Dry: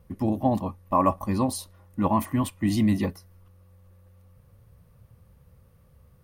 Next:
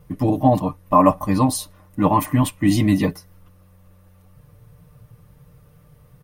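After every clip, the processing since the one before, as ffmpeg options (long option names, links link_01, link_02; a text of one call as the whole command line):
ffmpeg -i in.wav -af "bandreject=frequency=4500:width=27,aecho=1:1:6.7:0.75,volume=6dB" out.wav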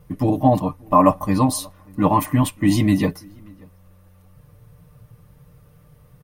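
ffmpeg -i in.wav -filter_complex "[0:a]asplit=2[link_01][link_02];[link_02]adelay=583.1,volume=-27dB,highshelf=frequency=4000:gain=-13.1[link_03];[link_01][link_03]amix=inputs=2:normalize=0" out.wav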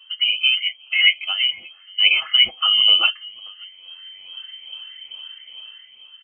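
ffmpeg -i in.wav -af "afftfilt=real='re*pow(10,16/40*sin(2*PI*(0.51*log(max(b,1)*sr/1024/100)/log(2)-(-2.3)*(pts-256)/sr)))':imag='im*pow(10,16/40*sin(2*PI*(0.51*log(max(b,1)*sr/1024/100)/log(2)-(-2.3)*(pts-256)/sr)))':win_size=1024:overlap=0.75,dynaudnorm=framelen=160:gausssize=9:maxgain=10.5dB,lowpass=frequency=2700:width_type=q:width=0.5098,lowpass=frequency=2700:width_type=q:width=0.6013,lowpass=frequency=2700:width_type=q:width=0.9,lowpass=frequency=2700:width_type=q:width=2.563,afreqshift=-3200,volume=-2dB" out.wav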